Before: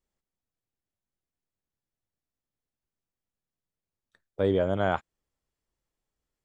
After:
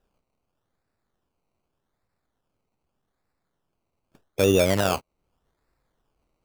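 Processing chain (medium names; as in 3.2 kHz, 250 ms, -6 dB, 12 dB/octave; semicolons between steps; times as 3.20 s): in parallel at +3 dB: compression, threshold -41 dBFS, peak gain reduction 19 dB; on the sum: peak limiter -13.5 dBFS, peak gain reduction 4 dB; decimation with a swept rate 20×, swing 60% 0.83 Hz; trim +4.5 dB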